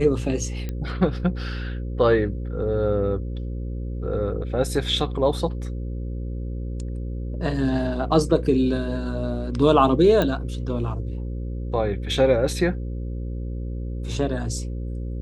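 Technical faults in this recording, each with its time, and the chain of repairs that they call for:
buzz 60 Hz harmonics 9 -29 dBFS
0.69 s: pop -17 dBFS
10.22 s: pop -10 dBFS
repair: de-click; de-hum 60 Hz, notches 9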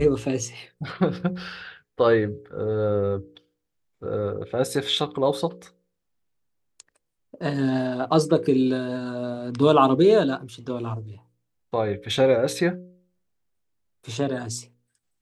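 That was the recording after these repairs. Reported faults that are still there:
nothing left

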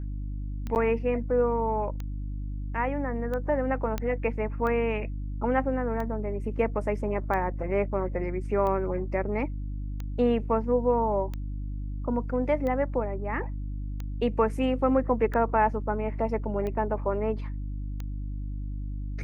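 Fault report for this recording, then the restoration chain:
hum 50 Hz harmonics 6 -33 dBFS
tick 45 rpm -22 dBFS
0.75–0.76 s: dropout 9.4 ms
3.98 s: pop -16 dBFS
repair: de-click; de-hum 50 Hz, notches 6; interpolate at 0.75 s, 9.4 ms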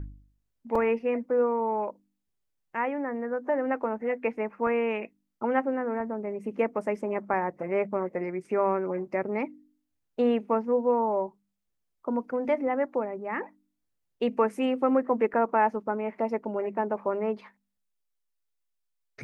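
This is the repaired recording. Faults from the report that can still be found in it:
nothing left

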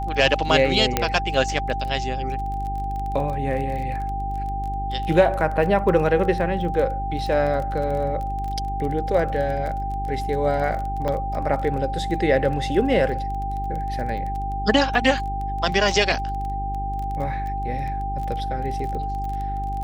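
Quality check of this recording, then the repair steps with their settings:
crackle 22 per s -29 dBFS
hum 50 Hz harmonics 8 -29 dBFS
whine 790 Hz -27 dBFS
0.97 s: pop -3 dBFS
11.08 s: dropout 2 ms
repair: de-click; de-hum 50 Hz, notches 8; band-stop 790 Hz, Q 30; interpolate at 11.08 s, 2 ms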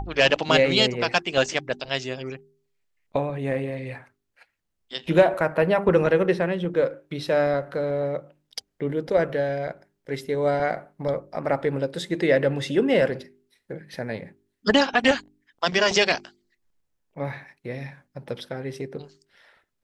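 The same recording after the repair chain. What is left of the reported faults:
nothing left

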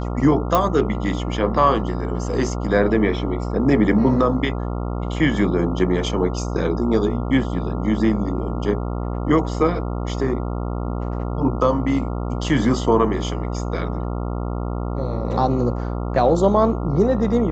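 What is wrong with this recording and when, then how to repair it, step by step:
buzz 60 Hz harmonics 23 -25 dBFS
0.55 s: pop -5 dBFS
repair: de-click; de-hum 60 Hz, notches 23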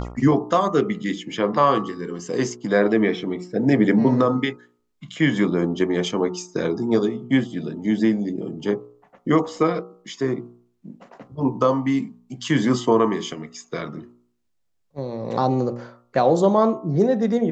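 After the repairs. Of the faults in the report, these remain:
nothing left

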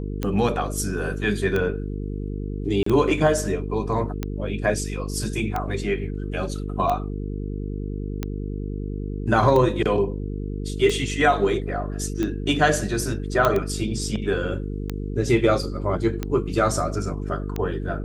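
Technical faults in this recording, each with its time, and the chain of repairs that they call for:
buzz 50 Hz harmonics 9 -29 dBFS
tick 45 rpm -13 dBFS
2.83–2.86 s: dropout 34 ms
13.45 s: pop -6 dBFS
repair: de-click; de-hum 50 Hz, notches 9; interpolate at 2.83 s, 34 ms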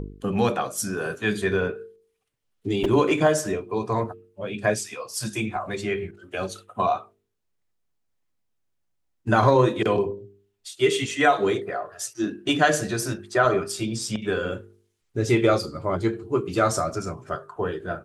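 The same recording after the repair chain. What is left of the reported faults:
nothing left

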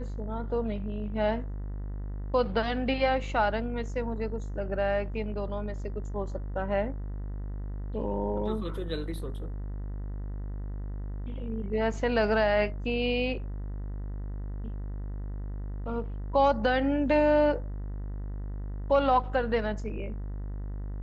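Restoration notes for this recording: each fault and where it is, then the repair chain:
buzz 50 Hz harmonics 40 -35 dBFS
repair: de-hum 50 Hz, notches 40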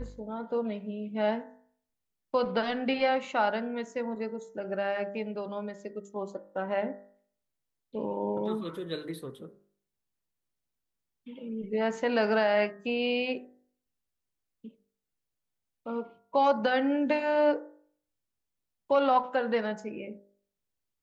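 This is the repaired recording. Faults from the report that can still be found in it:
nothing left

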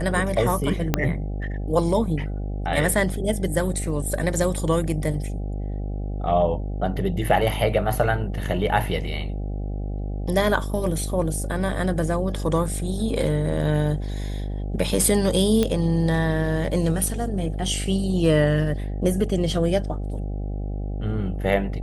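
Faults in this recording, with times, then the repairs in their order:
buzz 50 Hz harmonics 16 -28 dBFS
0.94 s: pop -5 dBFS
15.63 s: pop -9 dBFS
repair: de-click; de-hum 50 Hz, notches 16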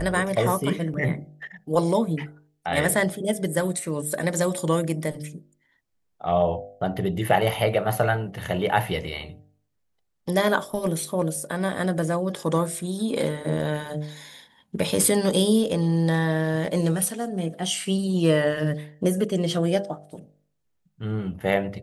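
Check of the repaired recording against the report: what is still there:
0.94 s: pop

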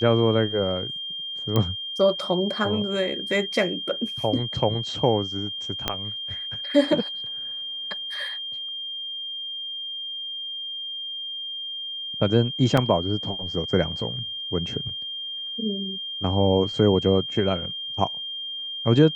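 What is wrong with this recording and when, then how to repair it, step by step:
whine 3.2 kHz -30 dBFS
1.56 s: pop -10 dBFS
5.88 s: pop -8 dBFS
12.77 s: dropout 4.3 ms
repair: de-click; band-stop 3.2 kHz, Q 30; interpolate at 12.77 s, 4.3 ms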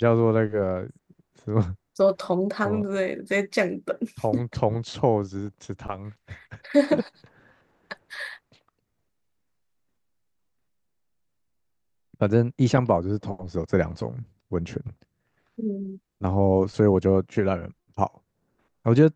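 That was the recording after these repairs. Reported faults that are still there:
5.88 s: pop

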